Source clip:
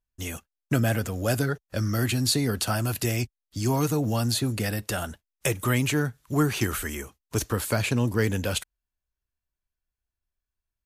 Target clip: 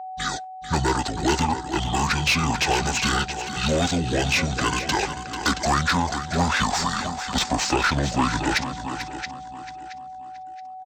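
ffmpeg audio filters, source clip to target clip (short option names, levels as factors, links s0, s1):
-filter_complex "[0:a]asplit=2[s0][s1];[s1]aecho=0:1:674|1348|2022:0.211|0.0592|0.0166[s2];[s0][s2]amix=inputs=2:normalize=0,asetrate=25476,aresample=44100,atempo=1.73107,aeval=exprs='val(0)+0.00708*sin(2*PI*750*n/s)':c=same,asplit=2[s3][s4];[s4]highpass=f=720:p=1,volume=8.91,asoftclip=type=tanh:threshold=0.335[s5];[s3][s5]amix=inputs=2:normalize=0,lowpass=f=3900:p=1,volume=0.501,asplit=2[s6][s7];[s7]aecho=0:1:442:0.299[s8];[s6][s8]amix=inputs=2:normalize=0"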